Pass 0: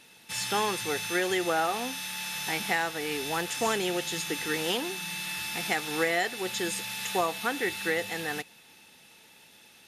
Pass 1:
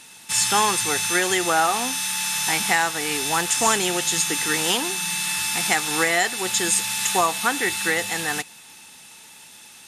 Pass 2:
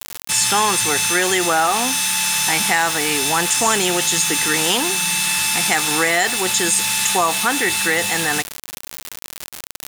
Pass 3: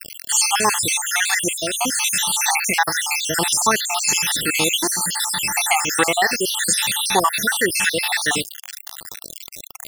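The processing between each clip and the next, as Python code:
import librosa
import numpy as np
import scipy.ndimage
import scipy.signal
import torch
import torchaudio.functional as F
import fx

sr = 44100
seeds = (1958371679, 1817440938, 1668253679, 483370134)

y1 = fx.graphic_eq_10(x, sr, hz=(500, 1000, 8000), db=(-5, 5, 11))
y1 = y1 * 10.0 ** (6.0 / 20.0)
y2 = fx.quant_dither(y1, sr, seeds[0], bits=6, dither='none')
y2 = fx.env_flatten(y2, sr, amount_pct=50)
y2 = y2 * 10.0 ** (1.5 / 20.0)
y3 = fx.spec_dropout(y2, sr, seeds[1], share_pct=65)
y3 = y3 * 10.0 ** (3.0 / 20.0)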